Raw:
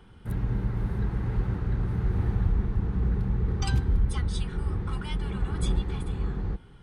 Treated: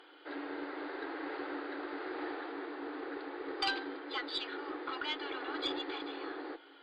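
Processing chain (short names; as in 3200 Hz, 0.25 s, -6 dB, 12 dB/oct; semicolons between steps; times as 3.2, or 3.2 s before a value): fifteen-band EQ 400 Hz -8 dB, 1000 Hz -6 dB, 2500 Hz -3 dB; FFT band-pass 270–4900 Hz; added harmonics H 2 -17 dB, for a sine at -26 dBFS; gain +6.5 dB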